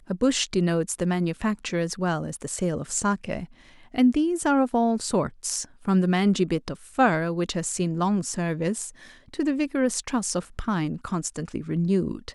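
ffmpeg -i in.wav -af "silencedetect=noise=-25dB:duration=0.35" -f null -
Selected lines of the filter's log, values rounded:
silence_start: 3.40
silence_end: 3.98 | silence_duration: 0.58
silence_start: 8.86
silence_end: 9.39 | silence_duration: 0.53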